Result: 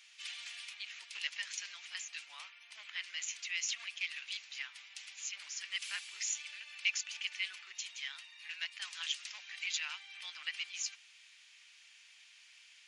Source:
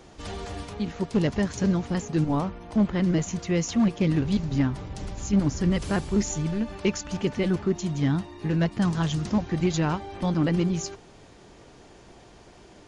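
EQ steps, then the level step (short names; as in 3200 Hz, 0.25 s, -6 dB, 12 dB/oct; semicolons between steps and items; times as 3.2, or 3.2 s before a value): ladder high-pass 2100 Hz, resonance 50%; +5.5 dB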